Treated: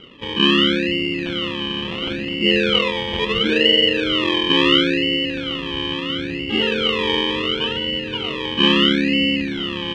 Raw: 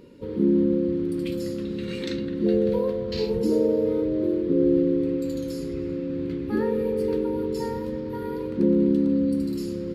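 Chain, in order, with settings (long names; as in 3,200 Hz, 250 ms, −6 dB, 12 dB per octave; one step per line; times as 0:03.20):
sample-and-hold swept by an LFO 25×, swing 60% 0.73 Hz
low-pass with resonance 3,000 Hz, resonance Q 15
level +2 dB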